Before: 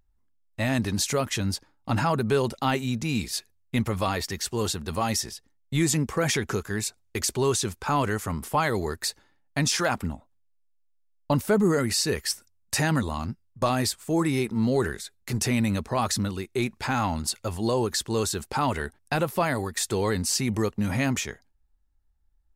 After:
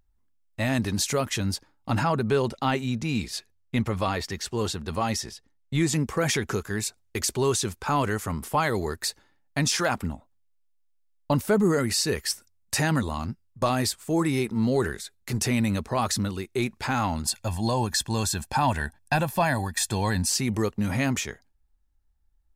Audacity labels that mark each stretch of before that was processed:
2.030000	5.930000	treble shelf 8.8 kHz -11 dB
17.250000	20.300000	comb 1.2 ms

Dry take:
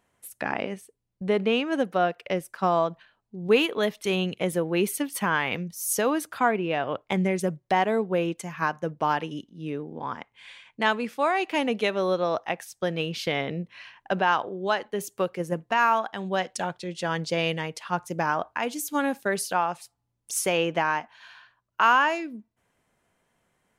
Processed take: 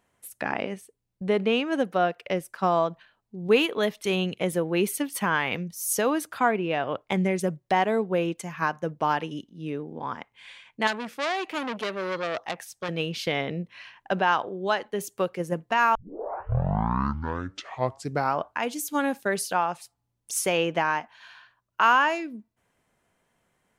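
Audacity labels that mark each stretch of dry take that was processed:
10.870000	12.890000	transformer saturation saturates under 3.7 kHz
15.950000	15.950000	tape start 2.62 s

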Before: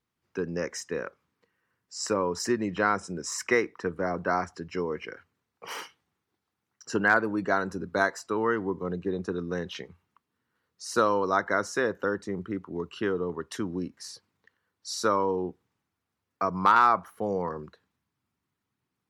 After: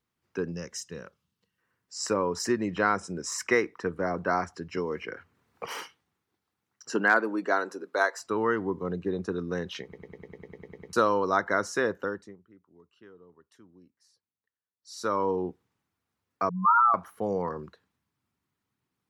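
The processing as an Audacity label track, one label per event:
0.520000	1.580000	time-frequency box 230–2600 Hz -10 dB
4.770000	5.660000	three bands compressed up and down depth 70%
6.900000	8.190000	high-pass 180 Hz -> 430 Hz 24 dB/octave
9.830000	9.830000	stutter in place 0.10 s, 11 plays
11.900000	15.280000	dip -24 dB, fades 0.48 s
16.490000	16.940000	spectral contrast enhancement exponent 3.4

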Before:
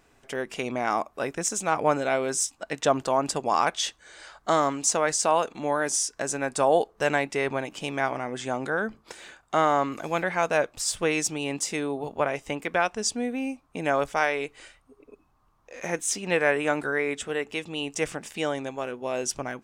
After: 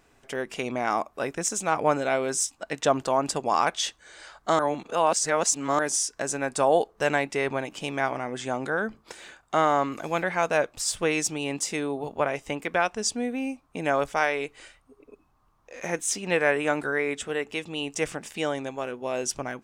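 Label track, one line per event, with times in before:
4.590000	5.790000	reverse

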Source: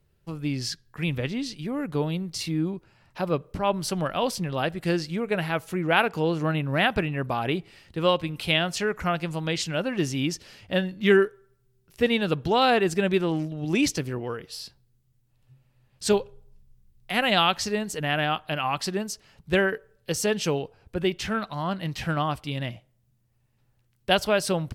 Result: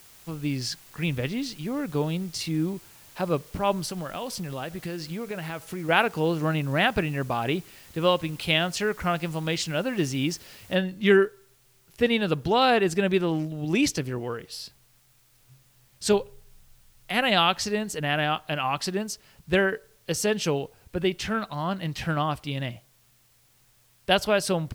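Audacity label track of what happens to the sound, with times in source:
3.850000	5.890000	compression, threshold -29 dBFS
10.750000	10.750000	noise floor step -52 dB -63 dB

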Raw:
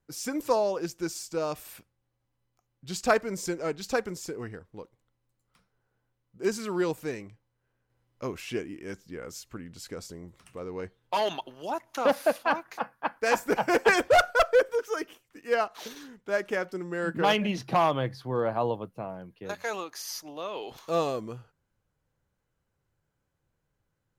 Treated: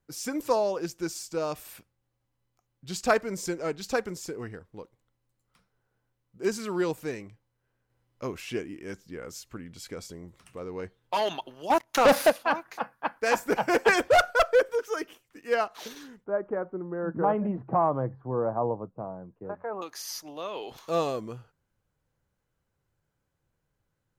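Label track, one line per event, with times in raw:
9.640000	10.130000	small resonant body resonances 2.3/3.3 kHz, height 11 dB
11.700000	12.300000	waveshaping leveller passes 3
16.240000	19.820000	low-pass 1.2 kHz 24 dB/octave

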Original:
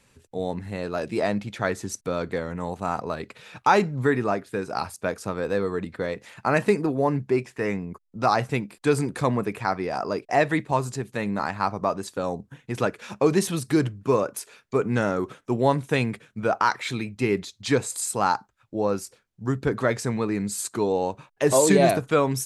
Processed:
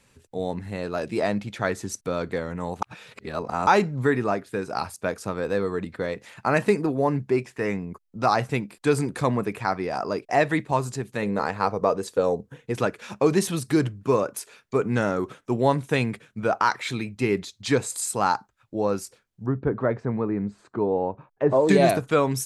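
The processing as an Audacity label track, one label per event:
2.820000	3.670000	reverse
11.220000	12.740000	peaking EQ 470 Hz +12.5 dB 0.37 oct
19.460000	21.690000	low-pass 1.2 kHz

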